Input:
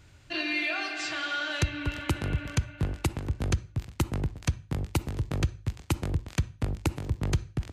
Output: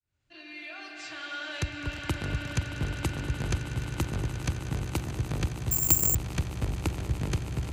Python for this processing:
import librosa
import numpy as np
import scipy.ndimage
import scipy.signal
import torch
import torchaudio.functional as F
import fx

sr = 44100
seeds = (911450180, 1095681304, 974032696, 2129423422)

y = fx.fade_in_head(x, sr, length_s=2.07)
y = fx.echo_swell(y, sr, ms=104, loudest=8, wet_db=-13.5)
y = fx.resample_bad(y, sr, factor=6, down='filtered', up='zero_stuff', at=(5.71, 6.15))
y = y * 10.0 ** (-2.5 / 20.0)